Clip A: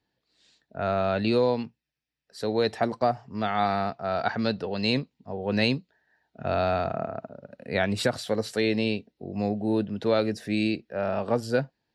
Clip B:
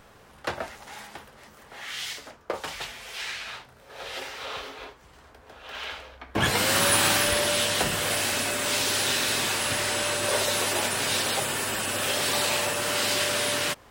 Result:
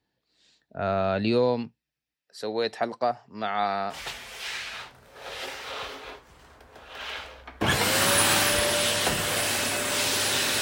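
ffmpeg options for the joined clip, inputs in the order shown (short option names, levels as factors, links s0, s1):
-filter_complex "[0:a]asettb=1/sr,asplit=3[s0][s1][s2];[s0]atrim=end=2.144[s3];[s1]atrim=start=2.14:end=3.99,asetpts=PTS-STARTPTS,afade=t=in:d=0.004:c=qsin,afade=t=out:st=1.846:d=0.004:c=qsin,highpass=f=440:p=1[s4];[s2]atrim=start=3.986[s5];[s3][s4]acrossfade=d=0.004:c1=hsin:c2=qsin[s6];[s6][s5]acrossfade=d=0.004:c1=qsin:c2=hsin,apad=whole_dur=10.61,atrim=end=10.61,atrim=end=3.99,asetpts=PTS-STARTPTS[s7];[1:a]atrim=start=2.63:end=9.35,asetpts=PTS-STARTPTS[s8];[s7][s8]acrossfade=d=0.1:c1=tri:c2=tri"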